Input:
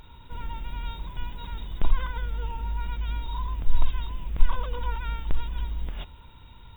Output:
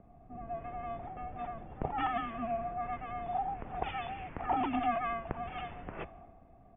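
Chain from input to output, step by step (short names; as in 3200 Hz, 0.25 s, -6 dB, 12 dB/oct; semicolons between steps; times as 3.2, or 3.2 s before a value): one-sided fold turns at -12 dBFS; bands offset in time highs, lows 0.16 s, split 170 Hz; low-pass opened by the level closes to 480 Hz, open at -15.5 dBFS; mistuned SSB -230 Hz 200–2900 Hz; gain +6.5 dB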